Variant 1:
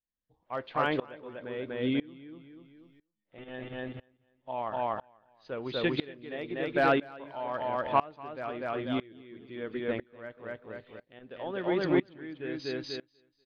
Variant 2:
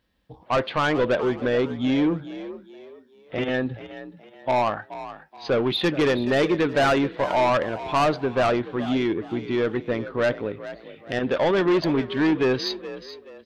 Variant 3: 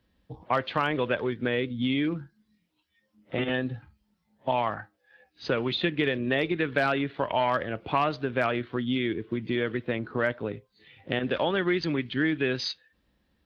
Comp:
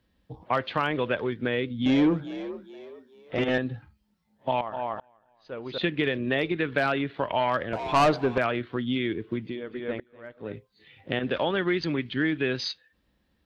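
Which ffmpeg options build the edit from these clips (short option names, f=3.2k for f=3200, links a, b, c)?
-filter_complex "[1:a]asplit=2[a][b];[0:a]asplit=2[c][d];[2:a]asplit=5[e][f][g][h][i];[e]atrim=end=1.862[j];[a]atrim=start=1.858:end=3.582[k];[f]atrim=start=3.578:end=4.612[l];[c]atrim=start=4.608:end=5.782[m];[g]atrim=start=5.778:end=7.732[n];[b]atrim=start=7.728:end=8.382[o];[h]atrim=start=8.378:end=9.63[p];[d]atrim=start=9.39:end=10.57[q];[i]atrim=start=10.33[r];[j][k]acrossfade=d=0.004:c1=hsin:c2=hsin[s];[s][l]acrossfade=d=0.004:c1=hsin:c2=hsin[t];[t][m]acrossfade=d=0.004:c1=hsin:c2=hsin[u];[u][n]acrossfade=d=0.004:c1=hsin:c2=hsin[v];[v][o]acrossfade=d=0.004:c1=hsin:c2=hsin[w];[w][p]acrossfade=d=0.004:c1=hsin:c2=hsin[x];[x][q]acrossfade=d=0.24:c1=tri:c2=tri[y];[y][r]acrossfade=d=0.24:c1=tri:c2=tri"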